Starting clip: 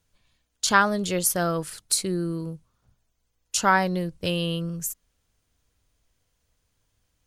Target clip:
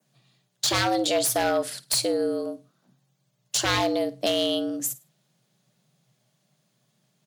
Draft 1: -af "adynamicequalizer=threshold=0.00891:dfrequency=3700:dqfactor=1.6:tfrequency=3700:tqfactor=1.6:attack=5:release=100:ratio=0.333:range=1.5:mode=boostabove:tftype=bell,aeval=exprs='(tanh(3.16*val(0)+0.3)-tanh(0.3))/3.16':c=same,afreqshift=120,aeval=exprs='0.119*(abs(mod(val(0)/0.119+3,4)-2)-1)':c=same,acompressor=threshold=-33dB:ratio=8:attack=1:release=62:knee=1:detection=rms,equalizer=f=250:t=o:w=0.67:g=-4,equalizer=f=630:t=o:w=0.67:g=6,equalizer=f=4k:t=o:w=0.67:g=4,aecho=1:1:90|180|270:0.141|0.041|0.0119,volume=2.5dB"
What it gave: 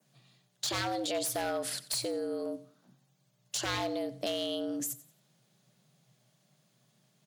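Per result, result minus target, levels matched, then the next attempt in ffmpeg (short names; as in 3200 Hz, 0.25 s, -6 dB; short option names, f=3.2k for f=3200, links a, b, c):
echo 38 ms late; compressor: peak gain reduction +9.5 dB
-af "adynamicequalizer=threshold=0.00891:dfrequency=3700:dqfactor=1.6:tfrequency=3700:tqfactor=1.6:attack=5:release=100:ratio=0.333:range=1.5:mode=boostabove:tftype=bell,aeval=exprs='(tanh(3.16*val(0)+0.3)-tanh(0.3))/3.16':c=same,afreqshift=120,aeval=exprs='0.119*(abs(mod(val(0)/0.119+3,4)-2)-1)':c=same,acompressor=threshold=-33dB:ratio=8:attack=1:release=62:knee=1:detection=rms,equalizer=f=250:t=o:w=0.67:g=-4,equalizer=f=630:t=o:w=0.67:g=6,equalizer=f=4k:t=o:w=0.67:g=4,aecho=1:1:52|104|156:0.141|0.041|0.0119,volume=2.5dB"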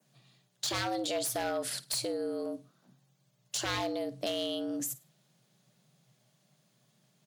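compressor: peak gain reduction +9.5 dB
-af "adynamicequalizer=threshold=0.00891:dfrequency=3700:dqfactor=1.6:tfrequency=3700:tqfactor=1.6:attack=5:release=100:ratio=0.333:range=1.5:mode=boostabove:tftype=bell,aeval=exprs='(tanh(3.16*val(0)+0.3)-tanh(0.3))/3.16':c=same,afreqshift=120,aeval=exprs='0.119*(abs(mod(val(0)/0.119+3,4)-2)-1)':c=same,acompressor=threshold=-22dB:ratio=8:attack=1:release=62:knee=1:detection=rms,equalizer=f=250:t=o:w=0.67:g=-4,equalizer=f=630:t=o:w=0.67:g=6,equalizer=f=4k:t=o:w=0.67:g=4,aecho=1:1:52|104|156:0.141|0.041|0.0119,volume=2.5dB"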